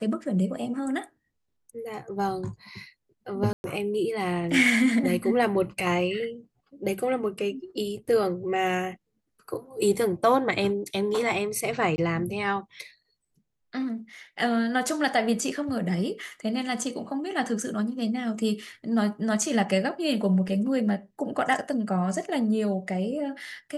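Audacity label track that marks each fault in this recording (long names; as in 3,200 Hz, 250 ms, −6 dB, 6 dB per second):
3.530000	3.640000	drop-out 111 ms
11.960000	11.980000	drop-out 20 ms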